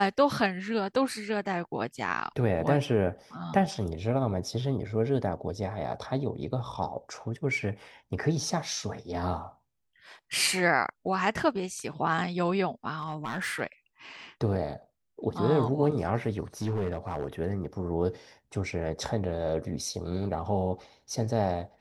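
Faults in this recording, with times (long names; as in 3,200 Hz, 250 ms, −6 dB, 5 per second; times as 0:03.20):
0:12.95–0:13.61: clipping −28 dBFS
0:16.62–0:17.25: clipping −25 dBFS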